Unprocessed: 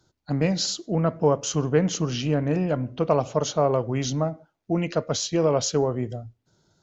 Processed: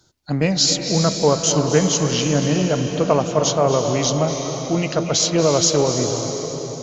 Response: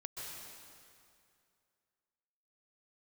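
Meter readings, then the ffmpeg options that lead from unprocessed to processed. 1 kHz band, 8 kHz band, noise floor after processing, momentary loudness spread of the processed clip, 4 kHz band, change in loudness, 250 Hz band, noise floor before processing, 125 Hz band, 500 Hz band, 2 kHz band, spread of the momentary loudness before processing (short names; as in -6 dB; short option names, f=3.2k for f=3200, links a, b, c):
+5.5 dB, n/a, -30 dBFS, 6 LU, +10.5 dB, +6.0 dB, +5.0 dB, -77 dBFS, +4.5 dB, +5.5 dB, +7.5 dB, 6 LU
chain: -filter_complex "[0:a]highshelf=f=2.7k:g=8,asplit=2[a][b];[1:a]atrim=start_sample=2205,asetrate=23814,aresample=44100[c];[b][c]afir=irnorm=-1:irlink=0,volume=-3dB[d];[a][d]amix=inputs=2:normalize=0"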